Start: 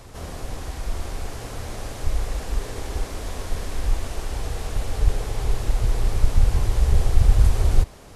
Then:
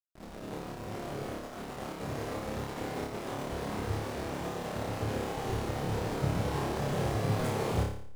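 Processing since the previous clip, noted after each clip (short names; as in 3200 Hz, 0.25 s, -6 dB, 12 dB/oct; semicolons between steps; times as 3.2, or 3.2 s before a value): spectral gate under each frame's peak -15 dB weak; backlash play -30 dBFS; flutter echo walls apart 4.9 m, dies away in 0.59 s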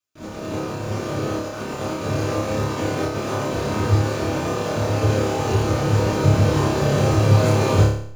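reverb, pre-delay 3 ms, DRR -4.5 dB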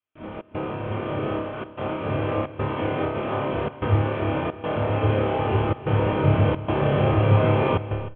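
rippled Chebyshev low-pass 3300 Hz, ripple 3 dB; step gate "xxx.xxxxxxxx.xx" 110 bpm -24 dB; echo 0.311 s -15 dB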